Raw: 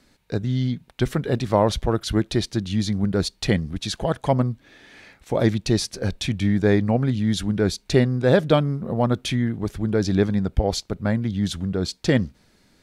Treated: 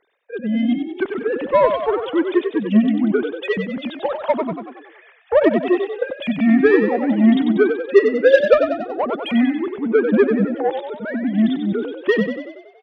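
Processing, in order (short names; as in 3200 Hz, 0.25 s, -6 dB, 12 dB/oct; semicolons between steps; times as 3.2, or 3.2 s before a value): sine-wave speech; added harmonics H 7 -25 dB, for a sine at -5.5 dBFS; frequency-shifting echo 94 ms, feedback 54%, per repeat +39 Hz, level -7 dB; gain +4.5 dB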